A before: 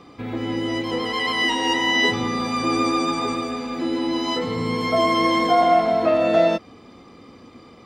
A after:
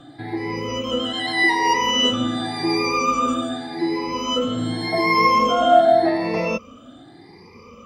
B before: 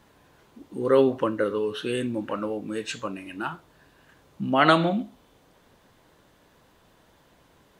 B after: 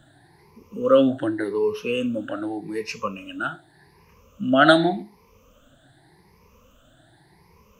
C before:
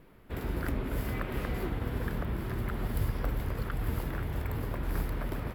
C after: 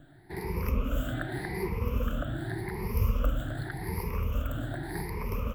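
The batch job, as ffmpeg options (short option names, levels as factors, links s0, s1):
-filter_complex "[0:a]afftfilt=real='re*pow(10,21/40*sin(2*PI*(0.83*log(max(b,1)*sr/1024/100)/log(2)-(0.86)*(pts-256)/sr)))':imag='im*pow(10,21/40*sin(2*PI*(0.83*log(max(b,1)*sr/1024/100)/log(2)-(0.86)*(pts-256)/sr)))':win_size=1024:overlap=0.75,acrossover=split=170|3200[s0][s1][s2];[s0]acompressor=mode=upward:threshold=0.00398:ratio=2.5[s3];[s3][s1][s2]amix=inputs=3:normalize=0,volume=0.708"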